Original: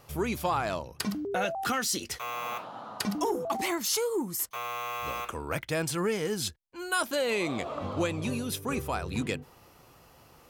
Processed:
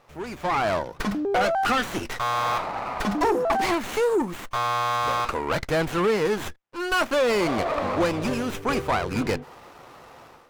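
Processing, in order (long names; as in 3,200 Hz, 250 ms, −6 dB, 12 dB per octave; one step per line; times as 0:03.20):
mid-hump overdrive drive 17 dB, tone 2,600 Hz, clips at −15.5 dBFS
automatic gain control gain up to 12.5 dB
windowed peak hold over 9 samples
level −8.5 dB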